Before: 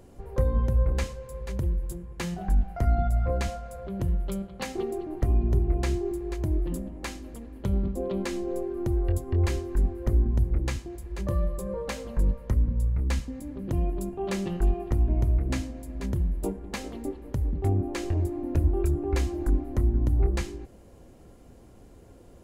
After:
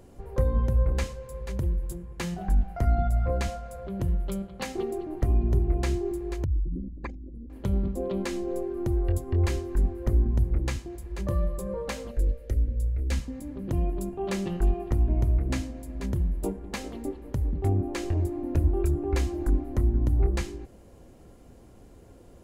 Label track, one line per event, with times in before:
6.440000	7.500000	spectral envelope exaggerated exponent 3
12.110000	13.120000	phaser with its sweep stopped centre 420 Hz, stages 4

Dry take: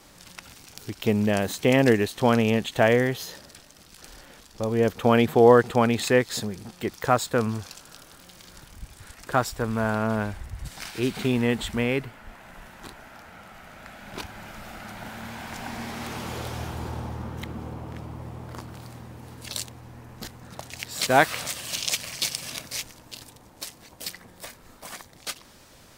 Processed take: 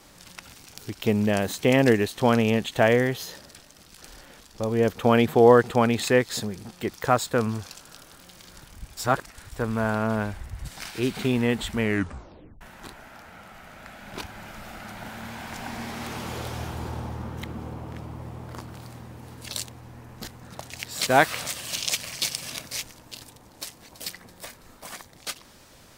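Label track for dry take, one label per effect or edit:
8.970000	9.520000	reverse
11.770000	11.770000	tape stop 0.84 s
23.170000	23.670000	delay throw 330 ms, feedback 55%, level −16 dB

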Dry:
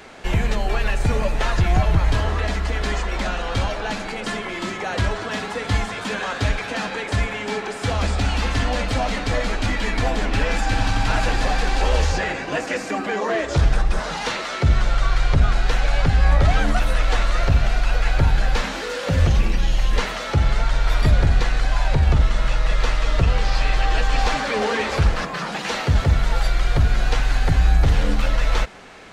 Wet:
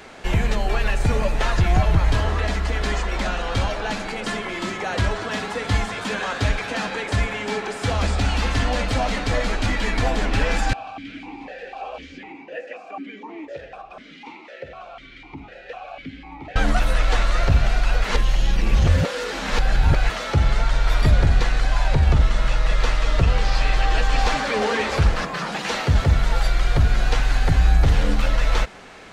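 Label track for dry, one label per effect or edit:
10.730000	16.560000	formant filter that steps through the vowels 4 Hz
18.040000	20.100000	reverse

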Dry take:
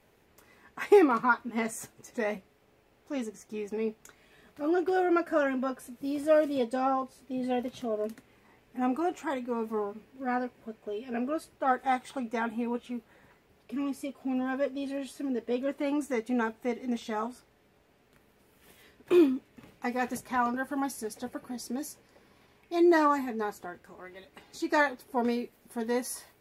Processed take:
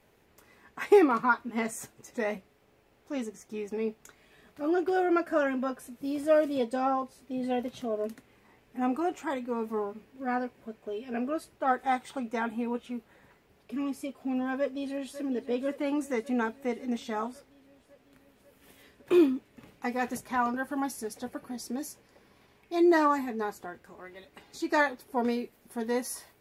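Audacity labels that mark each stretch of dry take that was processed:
14.580000	15.180000	delay throw 550 ms, feedback 70%, level −13.5 dB

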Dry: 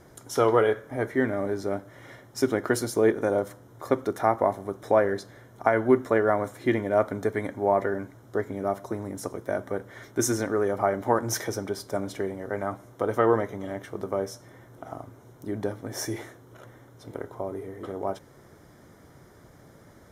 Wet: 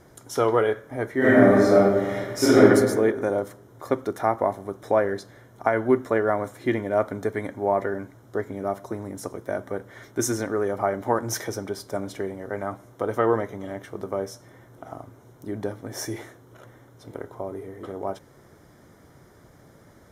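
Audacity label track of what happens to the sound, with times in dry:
1.180000	2.630000	thrown reverb, RT60 1.4 s, DRR −12 dB

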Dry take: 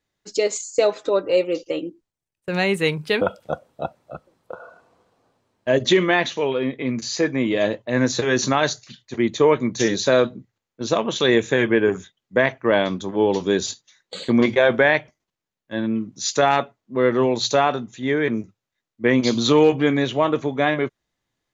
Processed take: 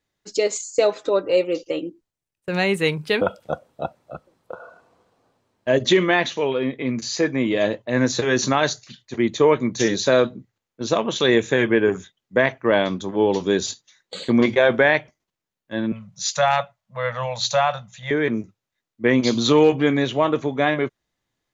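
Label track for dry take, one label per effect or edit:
15.920000	18.110000	Chebyshev band-stop filter 180–560 Hz, order 3

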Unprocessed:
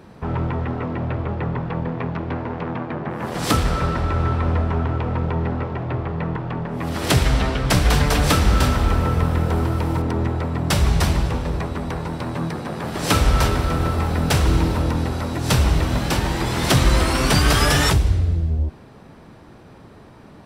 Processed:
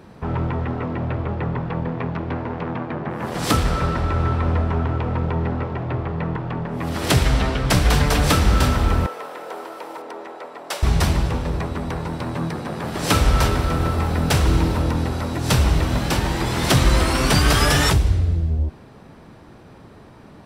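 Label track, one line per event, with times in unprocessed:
9.060000	10.830000	four-pole ladder high-pass 390 Hz, resonance 25%

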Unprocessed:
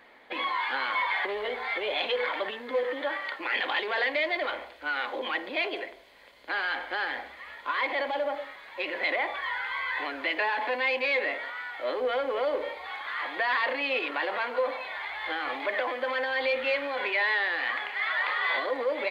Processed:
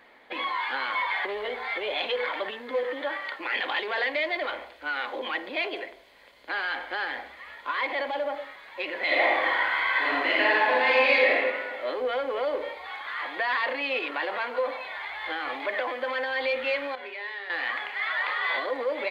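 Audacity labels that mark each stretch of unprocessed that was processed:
9.040000	11.330000	thrown reverb, RT60 1.5 s, DRR −6 dB
16.950000	17.500000	tuned comb filter 81 Hz, decay 0.43 s, harmonics odd, mix 80%

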